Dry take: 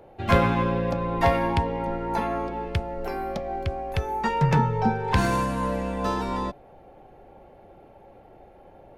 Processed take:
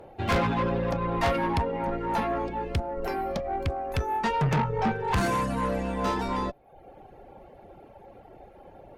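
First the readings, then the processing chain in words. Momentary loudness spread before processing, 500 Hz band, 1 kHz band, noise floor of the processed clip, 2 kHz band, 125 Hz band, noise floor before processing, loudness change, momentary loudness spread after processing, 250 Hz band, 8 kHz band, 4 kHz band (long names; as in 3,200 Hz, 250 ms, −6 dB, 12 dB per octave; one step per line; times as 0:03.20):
9 LU, −2.0 dB, −2.0 dB, −52 dBFS, −2.0 dB, −4.0 dB, −51 dBFS, −2.5 dB, 6 LU, −2.5 dB, −0.5 dB, −1.0 dB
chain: reverb reduction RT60 0.69 s
tube saturation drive 24 dB, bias 0.3
level +3.5 dB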